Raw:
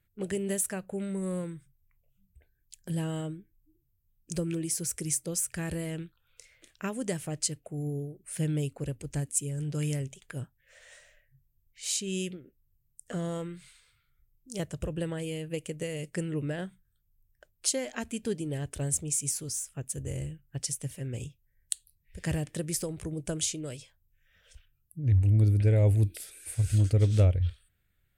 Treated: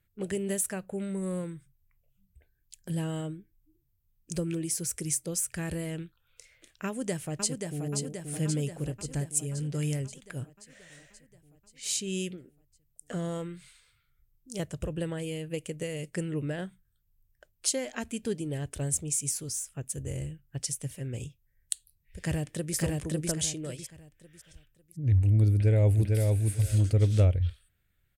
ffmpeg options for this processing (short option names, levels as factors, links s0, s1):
-filter_complex "[0:a]asplit=2[s0][s1];[s1]afade=t=in:st=6.86:d=0.01,afade=t=out:st=7.84:d=0.01,aecho=0:1:530|1060|1590|2120|2650|3180|3710|4240|4770|5300:0.595662|0.38718|0.251667|0.163584|0.106329|0.0691141|0.0449242|0.0292007|0.0189805|0.0123373[s2];[s0][s2]amix=inputs=2:normalize=0,asplit=2[s3][s4];[s4]afade=t=in:st=22.17:d=0.01,afade=t=out:st=22.76:d=0.01,aecho=0:1:550|1100|1650|2200:0.944061|0.283218|0.0849655|0.0254896[s5];[s3][s5]amix=inputs=2:normalize=0,asplit=2[s6][s7];[s7]afade=t=in:st=25.53:d=0.01,afade=t=out:st=26.34:d=0.01,aecho=0:1:450|900|1350:0.707946|0.106192|0.0159288[s8];[s6][s8]amix=inputs=2:normalize=0"